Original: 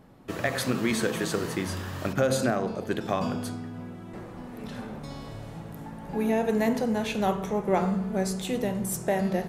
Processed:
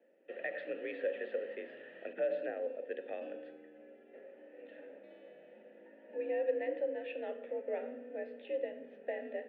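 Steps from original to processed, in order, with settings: mistuned SSB +54 Hz 150–3300 Hz; vowel filter e; trim -2 dB

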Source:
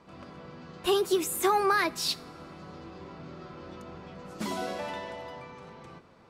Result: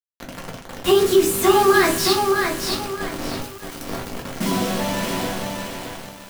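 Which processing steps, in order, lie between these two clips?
3.40–3.87 s: spectral contrast reduction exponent 0.17; peaking EQ 98 Hz +7.5 dB 2.4 oct; band-stop 2.3 kHz, Q 25; feedback comb 98 Hz, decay 1.6 s, harmonics all, mix 60%; bit crusher 7-bit; simulated room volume 120 m³, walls furnished, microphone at 1.7 m; loudness maximiser +17 dB; bit-crushed delay 619 ms, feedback 35%, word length 6-bit, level -4 dB; trim -5 dB

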